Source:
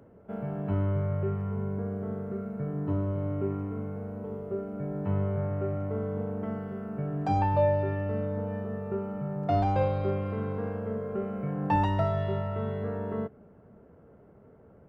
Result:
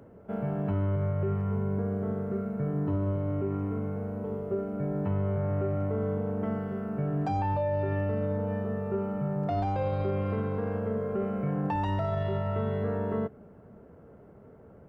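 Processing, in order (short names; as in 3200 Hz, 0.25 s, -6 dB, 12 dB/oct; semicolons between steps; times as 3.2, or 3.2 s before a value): limiter -24.5 dBFS, peak gain reduction 10.5 dB; gain +3 dB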